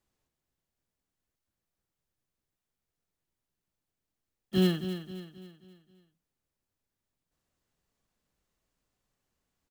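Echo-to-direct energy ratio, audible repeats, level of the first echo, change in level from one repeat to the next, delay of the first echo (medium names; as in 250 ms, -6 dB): -9.5 dB, 4, -10.5 dB, -7.0 dB, 266 ms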